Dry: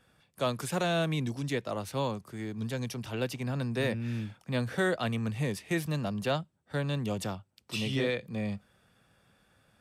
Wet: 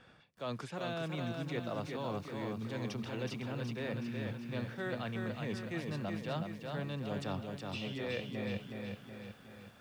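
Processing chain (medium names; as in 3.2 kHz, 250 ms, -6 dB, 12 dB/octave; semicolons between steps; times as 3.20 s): reverse; compression 12:1, threshold -42 dBFS, peak gain reduction 18.5 dB; reverse; low-pass 4.4 kHz 12 dB/octave; bass shelf 94 Hz -7 dB; bit-crushed delay 371 ms, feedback 55%, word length 12-bit, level -4 dB; trim +6.5 dB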